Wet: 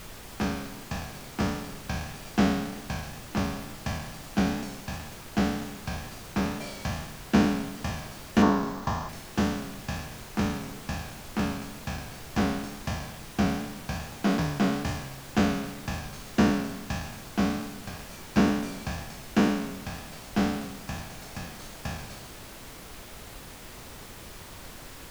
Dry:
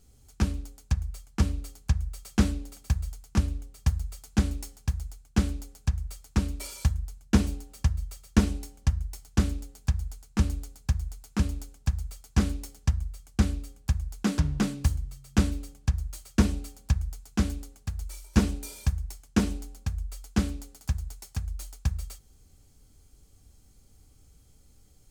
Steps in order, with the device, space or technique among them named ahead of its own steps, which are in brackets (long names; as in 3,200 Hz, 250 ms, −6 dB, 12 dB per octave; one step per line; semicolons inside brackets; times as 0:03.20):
peak hold with a decay on every bin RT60 1.04 s
horn gramophone (band-pass filter 180–4,300 Hz; parametric band 660 Hz +7.5 dB 0.49 octaves; tape wow and flutter; pink noise bed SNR 13 dB)
0:08.42–0:09.09: graphic EQ with 15 bands 400 Hz +4 dB, 1,000 Hz +12 dB, 2,500 Hz −7 dB, 10,000 Hz −10 dB